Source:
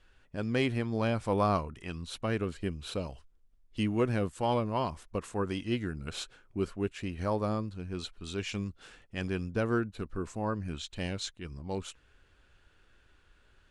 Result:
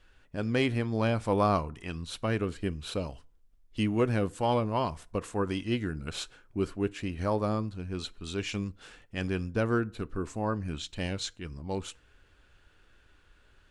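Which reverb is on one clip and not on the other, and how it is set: FDN reverb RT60 0.44 s, low-frequency decay 0.95×, high-frequency decay 0.65×, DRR 18.5 dB; trim +2 dB

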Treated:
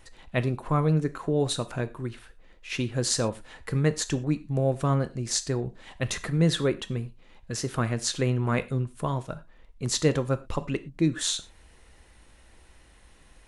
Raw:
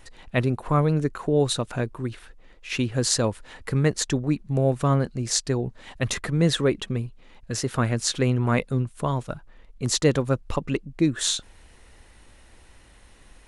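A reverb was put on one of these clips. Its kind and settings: gated-style reverb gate 140 ms falling, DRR 11 dB; trim -3.5 dB

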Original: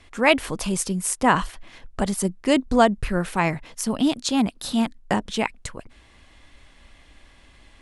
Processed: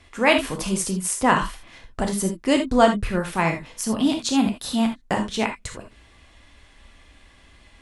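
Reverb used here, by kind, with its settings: gated-style reverb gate 100 ms flat, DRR 3.5 dB; trim -1 dB

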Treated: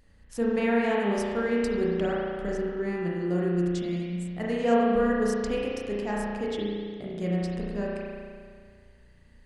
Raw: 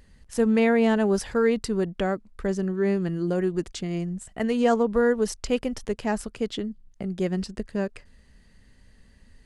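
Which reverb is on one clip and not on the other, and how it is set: spring tank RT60 2 s, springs 34 ms, chirp 60 ms, DRR -5 dB; trim -7 dB

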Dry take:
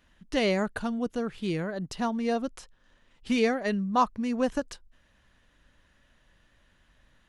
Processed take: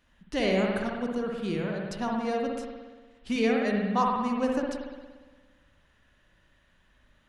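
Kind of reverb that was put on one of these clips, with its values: spring tank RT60 1.4 s, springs 58 ms, chirp 45 ms, DRR -0.5 dB; trim -3 dB

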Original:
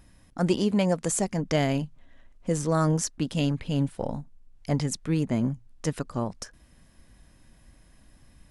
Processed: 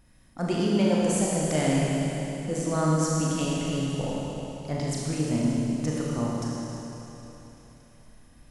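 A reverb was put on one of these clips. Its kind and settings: Schroeder reverb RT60 3.5 s, combs from 26 ms, DRR -5 dB; trim -5 dB

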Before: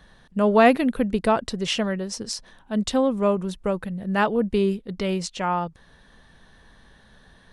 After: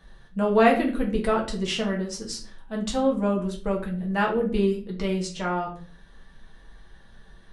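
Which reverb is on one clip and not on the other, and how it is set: simulated room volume 32 m³, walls mixed, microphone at 0.64 m; trim -6 dB

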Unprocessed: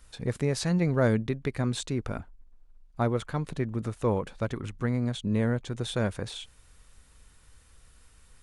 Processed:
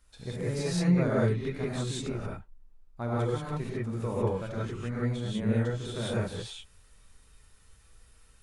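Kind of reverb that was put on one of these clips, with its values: gated-style reverb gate 210 ms rising, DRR -7.5 dB; trim -10 dB

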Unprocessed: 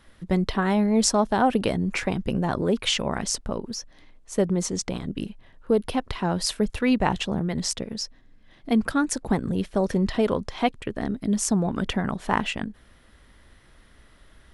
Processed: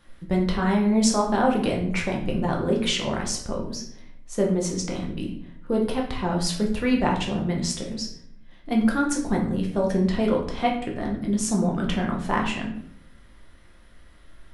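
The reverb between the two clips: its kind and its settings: simulated room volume 120 m³, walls mixed, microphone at 0.87 m; trim -3.5 dB

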